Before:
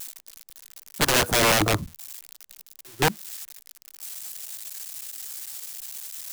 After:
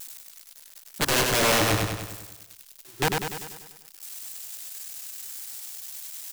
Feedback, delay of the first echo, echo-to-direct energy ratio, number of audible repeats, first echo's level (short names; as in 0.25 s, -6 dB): 56%, 98 ms, -2.0 dB, 7, -3.5 dB